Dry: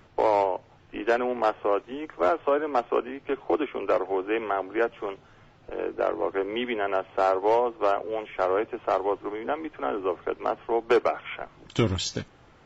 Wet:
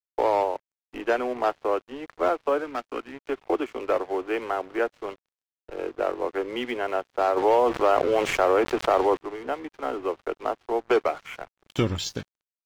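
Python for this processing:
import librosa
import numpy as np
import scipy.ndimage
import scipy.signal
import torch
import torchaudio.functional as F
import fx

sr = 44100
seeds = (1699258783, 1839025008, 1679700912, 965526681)

y = fx.spec_box(x, sr, start_s=2.64, length_s=0.5, low_hz=340.0, high_hz=1200.0, gain_db=-8)
y = np.sign(y) * np.maximum(np.abs(y) - 10.0 ** (-44.5 / 20.0), 0.0)
y = fx.env_flatten(y, sr, amount_pct=70, at=(7.36, 9.16), fade=0.02)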